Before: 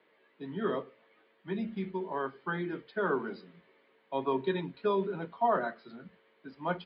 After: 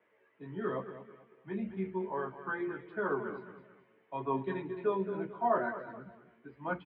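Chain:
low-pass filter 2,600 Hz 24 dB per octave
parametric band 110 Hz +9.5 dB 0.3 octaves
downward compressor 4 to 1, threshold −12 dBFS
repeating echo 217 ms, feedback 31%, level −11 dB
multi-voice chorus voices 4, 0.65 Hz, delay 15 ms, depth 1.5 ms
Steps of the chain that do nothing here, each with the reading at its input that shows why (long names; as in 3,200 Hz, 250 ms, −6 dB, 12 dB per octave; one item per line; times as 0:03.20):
downward compressor, threshold −12 dBFS: peak of its input −17.5 dBFS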